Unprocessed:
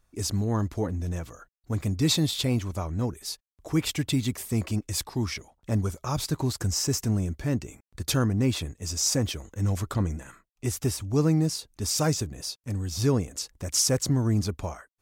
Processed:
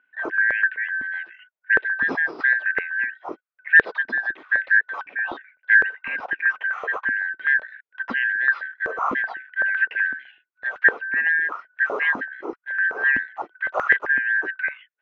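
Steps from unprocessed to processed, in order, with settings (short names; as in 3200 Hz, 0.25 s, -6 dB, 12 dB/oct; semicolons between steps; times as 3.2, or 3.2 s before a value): four-band scrambler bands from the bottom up 4123; inverse Chebyshev low-pass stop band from 8100 Hz, stop band 60 dB; stepped high-pass 7.9 Hz 260–1700 Hz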